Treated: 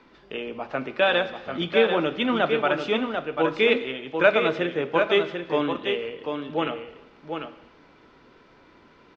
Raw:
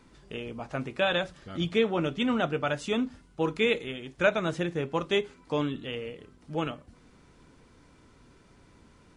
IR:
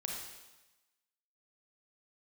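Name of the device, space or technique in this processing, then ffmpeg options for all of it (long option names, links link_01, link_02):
saturated reverb return: -filter_complex "[0:a]lowpass=frequency=5900:width=0.5412,lowpass=frequency=5900:width=1.3066,bandreject=frequency=60:width_type=h:width=6,bandreject=frequency=120:width_type=h:width=6,asplit=2[link_01][link_02];[1:a]atrim=start_sample=2205[link_03];[link_02][link_03]afir=irnorm=-1:irlink=0,asoftclip=type=tanh:threshold=-20dB,volume=-10dB[link_04];[link_01][link_04]amix=inputs=2:normalize=0,acrossover=split=260 4400:gain=0.224 1 0.178[link_05][link_06][link_07];[link_05][link_06][link_07]amix=inputs=3:normalize=0,aecho=1:1:742:0.501,volume=4.5dB"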